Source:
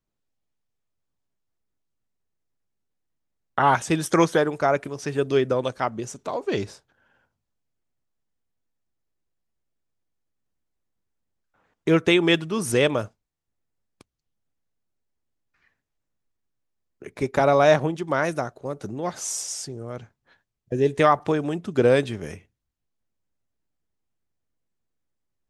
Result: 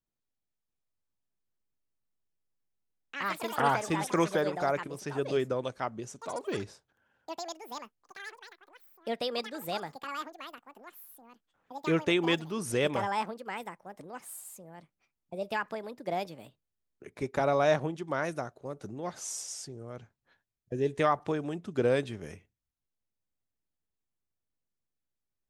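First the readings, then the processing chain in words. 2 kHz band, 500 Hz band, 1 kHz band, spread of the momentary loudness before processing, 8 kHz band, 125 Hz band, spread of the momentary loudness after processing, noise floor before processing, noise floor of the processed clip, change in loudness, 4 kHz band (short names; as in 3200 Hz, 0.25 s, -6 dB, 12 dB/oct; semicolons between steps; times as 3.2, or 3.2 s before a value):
-7.0 dB, -8.0 dB, -6.5 dB, 14 LU, -7.5 dB, -8.5 dB, 19 LU, -81 dBFS, under -85 dBFS, -9.5 dB, -6.5 dB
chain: echoes that change speed 0.673 s, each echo +6 st, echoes 3, each echo -6 dB; gain -8.5 dB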